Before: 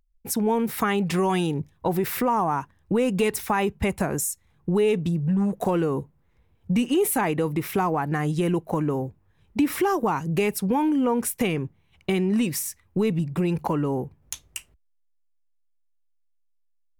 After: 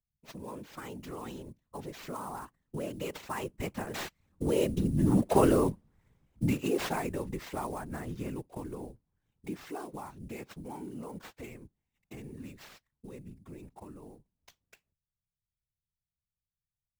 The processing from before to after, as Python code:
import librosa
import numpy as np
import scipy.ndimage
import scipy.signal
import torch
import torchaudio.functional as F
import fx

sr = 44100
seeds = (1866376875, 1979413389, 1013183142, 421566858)

y = fx.doppler_pass(x, sr, speed_mps=20, closest_m=10.0, pass_at_s=5.49)
y = fx.sample_hold(y, sr, seeds[0], rate_hz=10000.0, jitter_pct=20)
y = fx.whisperise(y, sr, seeds[1])